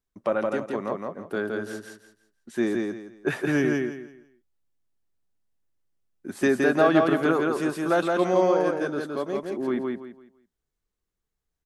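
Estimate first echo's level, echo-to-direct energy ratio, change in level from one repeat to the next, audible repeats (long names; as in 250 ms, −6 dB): −3.0 dB, −2.5 dB, −11.5 dB, 3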